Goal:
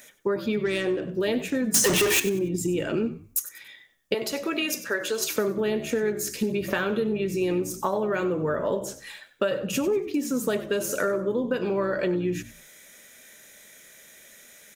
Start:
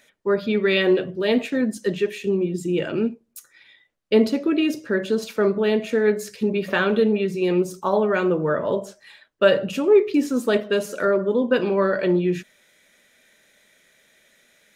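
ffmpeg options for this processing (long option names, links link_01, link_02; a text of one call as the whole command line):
ffmpeg -i in.wav -filter_complex "[0:a]asettb=1/sr,asplit=3[link_01][link_02][link_03];[link_01]atrim=end=4.144[link_04];[link_02]atrim=start=4.14:end=5.36,asetpts=PTS-STARTPTS,afade=type=in:duration=0.004:curve=qsin,afade=type=out:start_time=1.216:duration=0.004:curve=qsin,highpass=660[link_05];[link_03]atrim=start=5.356[link_06];[link_04][link_05]acrossfade=duration=0.004:curve1=hsin:curve2=qsin[link_07];[link_07][link_06]acrossfade=duration=0.004:curve1=qsin:curve2=hsin,acompressor=threshold=-28dB:ratio=8,asettb=1/sr,asplit=3[link_08][link_09][link_10];[link_08]atrim=end=1.744[link_11];[link_09]atrim=start=1.74:end=2.2,asetpts=PTS-STARTPTS,afade=type=in:duration=0.004:curve=qsin,afade=type=out:start_time=0.456:duration=0.004:curve=qsin,asplit=2[link_12][link_13];[link_13]highpass=frequency=720:poles=1,volume=34dB,asoftclip=type=tanh:threshold=-21dB[link_14];[link_12][link_14]amix=inputs=2:normalize=0,lowpass=frequency=7700:poles=1,volume=-6dB[link_15];[link_10]atrim=start=2.196[link_16];[link_11][link_15]acrossfade=duration=0.004:curve1=hsin:curve2=qsin[link_17];[link_17][link_16]acrossfade=duration=0.004:curve1=qsin:curve2=hsin,aexciter=amount=3.1:drive=3.2:freq=5700,asettb=1/sr,asplit=3[link_18][link_19][link_20];[link_18]atrim=end=0.624[link_21];[link_19]atrim=start=0.62:end=1.02,asetpts=PTS-STARTPTS,afade=type=in:duration=0.004:curve=qsin,afade=type=out:start_time=0.396:duration=0.004:curve=qsin,adynamicsmooth=sensitivity=5:basefreq=1500[link_22];[link_20]atrim=start=1.016[link_23];[link_21][link_22]acrossfade=duration=0.004:curve1=hsin:curve2=qsin[link_24];[link_24][link_23]acrossfade=duration=0.004:curve1=qsin:curve2=hsin,asplit=4[link_25][link_26][link_27][link_28];[link_26]adelay=95,afreqshift=-65,volume=-14.5dB[link_29];[link_27]adelay=190,afreqshift=-130,volume=-25dB[link_30];[link_28]adelay=285,afreqshift=-195,volume=-35.4dB[link_31];[link_25][link_29][link_30][link_31]amix=inputs=4:normalize=0,volume=5dB" out.wav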